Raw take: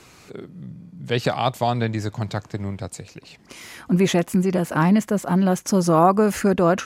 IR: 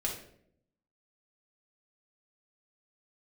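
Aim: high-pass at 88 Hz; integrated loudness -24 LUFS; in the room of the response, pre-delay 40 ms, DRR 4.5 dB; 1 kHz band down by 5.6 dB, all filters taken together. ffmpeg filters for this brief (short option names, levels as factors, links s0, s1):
-filter_complex "[0:a]highpass=88,equalizer=f=1000:t=o:g=-8,asplit=2[s0][s1];[1:a]atrim=start_sample=2205,adelay=40[s2];[s1][s2]afir=irnorm=-1:irlink=0,volume=0.398[s3];[s0][s3]amix=inputs=2:normalize=0,volume=0.668"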